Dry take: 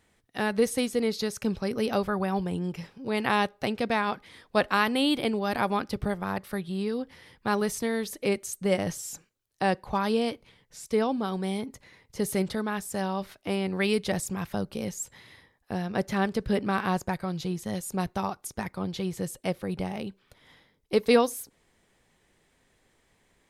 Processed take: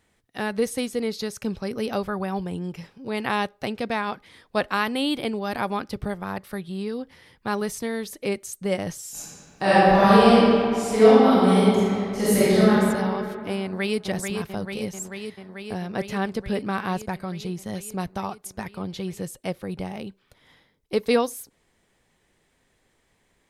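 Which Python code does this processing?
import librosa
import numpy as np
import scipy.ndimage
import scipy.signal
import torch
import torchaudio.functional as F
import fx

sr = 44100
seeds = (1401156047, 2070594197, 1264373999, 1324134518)

y = fx.reverb_throw(x, sr, start_s=9.11, length_s=3.59, rt60_s=2.5, drr_db=-12.0)
y = fx.echo_throw(y, sr, start_s=13.61, length_s=0.41, ms=440, feedback_pct=80, wet_db=-5.5)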